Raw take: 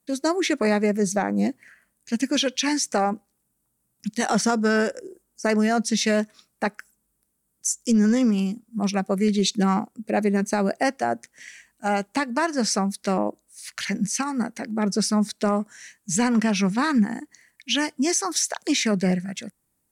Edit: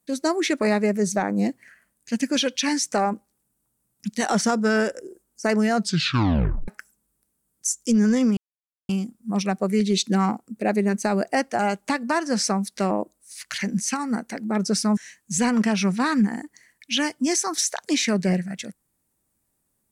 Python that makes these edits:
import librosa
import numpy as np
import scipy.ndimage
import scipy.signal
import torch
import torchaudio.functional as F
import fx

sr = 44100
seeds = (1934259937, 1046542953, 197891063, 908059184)

y = fx.edit(x, sr, fx.tape_stop(start_s=5.77, length_s=0.91),
    fx.insert_silence(at_s=8.37, length_s=0.52),
    fx.cut(start_s=11.07, length_s=0.79),
    fx.cut(start_s=15.24, length_s=0.51), tone=tone)